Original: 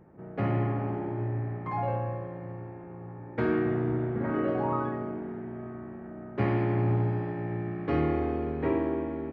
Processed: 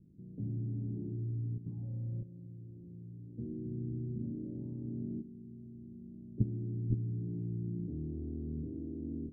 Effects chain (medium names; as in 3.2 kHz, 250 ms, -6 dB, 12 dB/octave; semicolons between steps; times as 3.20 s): rattle on loud lows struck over -32 dBFS, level -23 dBFS; level held to a coarse grid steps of 12 dB; inverse Chebyshev low-pass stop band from 1.6 kHz, stop band 80 dB; trim +1.5 dB